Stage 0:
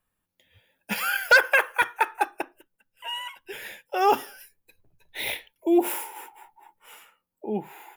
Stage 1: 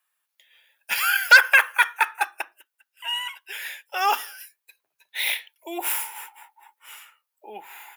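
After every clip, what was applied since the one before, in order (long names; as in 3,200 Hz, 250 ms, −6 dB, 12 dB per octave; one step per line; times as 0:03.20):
high-pass filter 1,200 Hz 12 dB per octave
level +6 dB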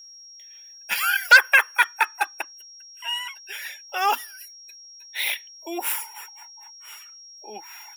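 reverb reduction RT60 0.62 s
steady tone 5,600 Hz −43 dBFS
dynamic equaliser 240 Hz, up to +7 dB, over −51 dBFS, Q 1.8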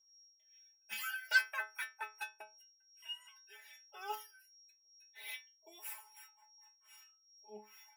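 two-band tremolo in antiphase 2.5 Hz, depth 70%, crossover 1,300 Hz
stiff-string resonator 210 Hz, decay 0.26 s, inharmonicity 0.002
level −4 dB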